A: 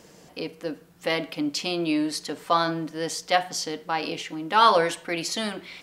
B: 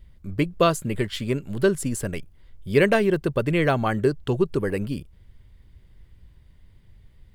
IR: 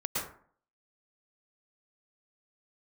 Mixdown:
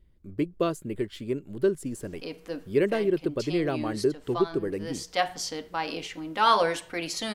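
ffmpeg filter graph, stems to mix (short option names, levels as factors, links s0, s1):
-filter_complex "[0:a]adelay=1850,volume=0.668[s0];[1:a]equalizer=f=340:t=o:w=1.1:g=10.5,volume=0.251,asplit=2[s1][s2];[s2]apad=whole_len=338337[s3];[s0][s3]sidechaincompress=threshold=0.0316:ratio=8:attack=16:release=775[s4];[s4][s1]amix=inputs=2:normalize=0"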